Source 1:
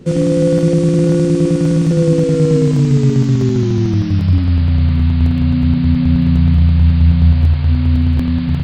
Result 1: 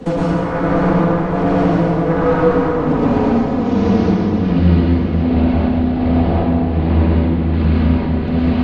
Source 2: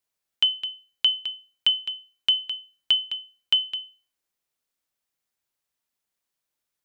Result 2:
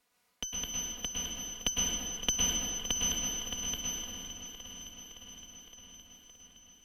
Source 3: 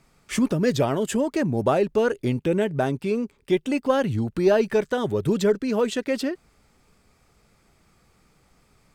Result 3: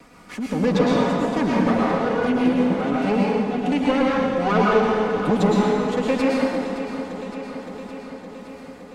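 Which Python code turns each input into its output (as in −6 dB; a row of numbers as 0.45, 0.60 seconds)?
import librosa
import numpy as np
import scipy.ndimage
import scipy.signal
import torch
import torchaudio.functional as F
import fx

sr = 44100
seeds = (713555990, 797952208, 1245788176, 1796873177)

p1 = fx.lower_of_two(x, sr, delay_ms=4.1)
p2 = fx.highpass(p1, sr, hz=100.0, slope=6)
p3 = fx.env_lowpass_down(p2, sr, base_hz=2700.0, full_db=-12.0)
p4 = fx.high_shelf(p3, sr, hz=4000.0, db=-8.5)
p5 = fx.fold_sine(p4, sr, drive_db=10, ceiling_db=-5.0)
p6 = p4 + F.gain(torch.from_numpy(p5), -5.5).numpy()
p7 = p6 * (1.0 - 0.8 / 2.0 + 0.8 / 2.0 * np.cos(2.0 * np.pi * 1.3 * (np.arange(len(p6)) / sr)))
p8 = fx.echo_feedback(p7, sr, ms=565, feedback_pct=59, wet_db=-14.5)
p9 = fx.rev_plate(p8, sr, seeds[0], rt60_s=1.7, hf_ratio=0.8, predelay_ms=95, drr_db=-5.0)
p10 = fx.band_squash(p9, sr, depth_pct=40)
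y = F.gain(torch.from_numpy(p10), -7.5).numpy()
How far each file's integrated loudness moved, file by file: −2.5, −8.5, +2.5 LU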